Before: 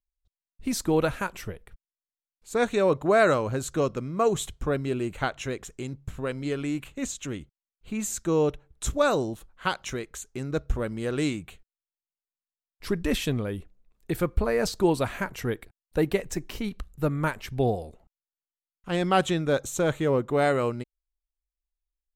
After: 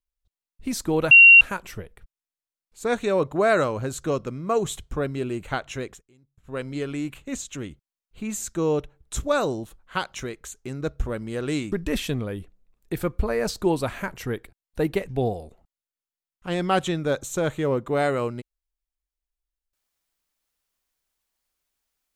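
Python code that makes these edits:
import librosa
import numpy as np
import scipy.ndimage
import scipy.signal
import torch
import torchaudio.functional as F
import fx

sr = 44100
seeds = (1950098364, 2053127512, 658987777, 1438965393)

y = fx.edit(x, sr, fx.insert_tone(at_s=1.11, length_s=0.3, hz=2750.0, db=-6.5),
    fx.fade_down_up(start_s=5.59, length_s=0.68, db=-24.0, fade_s=0.14),
    fx.cut(start_s=11.42, length_s=1.48),
    fx.cut(start_s=16.27, length_s=1.24), tone=tone)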